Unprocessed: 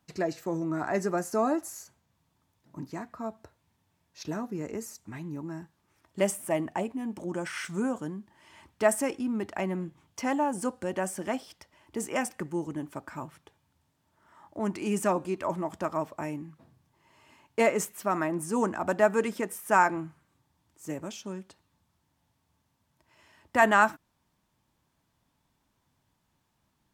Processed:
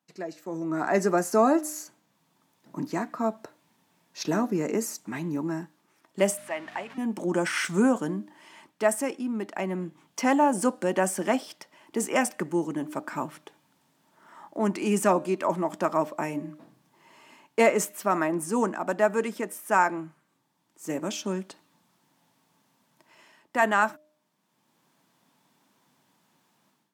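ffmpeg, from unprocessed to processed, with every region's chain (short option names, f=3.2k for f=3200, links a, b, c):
-filter_complex "[0:a]asettb=1/sr,asplit=3[a][b][c];[a]atrim=end=6.374[d];[b]atrim=start=6.37:end=6.98,asetpts=PTS-STARTPTS,afade=t=in:d=0.004:c=qsin,afade=t=out:st=0.606:d=0.004:c=qsin,aeval=exprs='val(0)+0.5*0.0106*sgn(val(0))':c=same,bandpass=f=1.9k:t=q:w=1,aeval=exprs='val(0)+0.00355*(sin(2*PI*50*n/s)+sin(2*PI*2*50*n/s)/2+sin(2*PI*3*50*n/s)/3+sin(2*PI*4*50*n/s)/4+sin(2*PI*5*50*n/s)/5)':c=same[e];[c]atrim=start=6.976[f];[d][e]acrossfade=d=0.004:c1=hsin:c2=qsin[g];[g][f]acrossfade=d=0.004:c1=qsin:c2=hsin,highpass=f=170:w=0.5412,highpass=f=170:w=1.3066,bandreject=f=304.3:t=h:w=4,bandreject=f=608.6:t=h:w=4,dynaudnorm=f=460:g=3:m=16.5dB,volume=-7.5dB"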